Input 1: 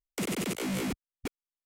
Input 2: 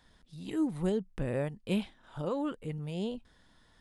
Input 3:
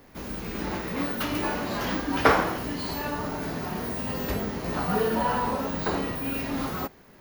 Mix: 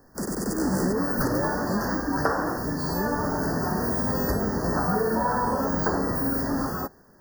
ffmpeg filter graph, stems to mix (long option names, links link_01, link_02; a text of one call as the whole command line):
ffmpeg -i stem1.wav -i stem2.wav -i stem3.wav -filter_complex "[0:a]volume=1.5dB[link_01];[1:a]volume=-2.5dB[link_02];[2:a]volume=-3dB[link_03];[link_01][link_02][link_03]amix=inputs=3:normalize=0,dynaudnorm=framelen=120:gausssize=13:maxgain=10dB,asuperstop=centerf=2900:order=20:qfactor=1.1,acompressor=threshold=-21dB:ratio=5" out.wav